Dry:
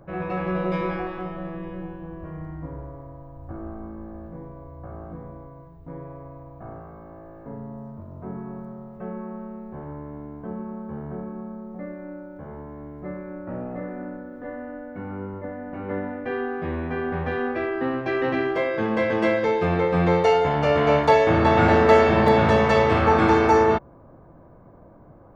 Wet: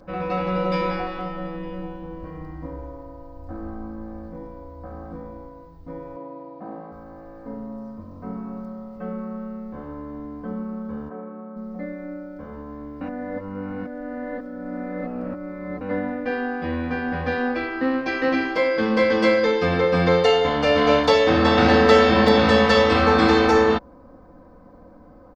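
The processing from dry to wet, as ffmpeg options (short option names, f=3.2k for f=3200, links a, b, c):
-filter_complex "[0:a]asettb=1/sr,asplit=3[a][b][c];[a]atrim=end=6.164[d];[b]atrim=start=6.16:end=6.92,asetpts=PTS-STARTPTS,afade=t=in:d=0.004:c=qsin,afade=t=out:st=0.756:d=0.004:c=qsin,highpass=f=150:w=0.5412,highpass=f=150:w=1.3066,equalizer=f=190:t=q:w=4:g=7,equalizer=f=350:t=q:w=4:g=7,equalizer=f=610:t=q:w=4:g=4,equalizer=f=980:t=q:w=4:g=4,equalizer=f=1.4k:t=q:w=4:g=-6,lowpass=f=4.4k:w=0.5412,lowpass=f=4.4k:w=1.3066[e];[c]atrim=start=6.916[f];[d][e]acrossfade=d=0.004:c1=hsin:c2=qsin[g];[g][f]acrossfade=d=0.004:c1=qsin:c2=hsin,asplit=3[h][i][j];[h]afade=t=out:st=11.08:d=0.02[k];[i]highpass=310,lowpass=2.1k,afade=t=in:st=11.08:d=0.02,afade=t=out:st=11.55:d=0.02[l];[j]afade=t=in:st=11.55:d=0.02[m];[k][l][m]amix=inputs=3:normalize=0,asplit=3[n][o][p];[n]atrim=end=13.012[q];[o]atrim=start=13.008:end=15.812,asetpts=PTS-STARTPTS,areverse[r];[p]atrim=start=15.808[s];[q][r]acrossfade=d=0.004:c1=hsin:c2=hsin[t];[t][s]acrossfade=d=0.004:c1=hsin:c2=hsin,equalizer=f=4.8k:t=o:w=0.78:g=13.5,bandreject=f=800:w=20,aecho=1:1:3.9:0.82"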